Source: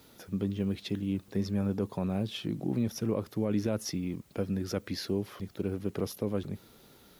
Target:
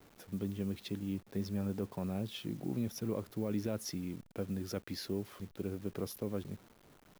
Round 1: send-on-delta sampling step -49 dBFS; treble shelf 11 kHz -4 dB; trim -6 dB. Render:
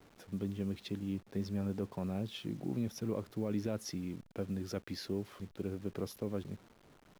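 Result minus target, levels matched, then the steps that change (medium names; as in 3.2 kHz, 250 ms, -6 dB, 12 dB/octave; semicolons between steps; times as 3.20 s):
8 kHz band -2.5 dB
change: treble shelf 11 kHz +7.5 dB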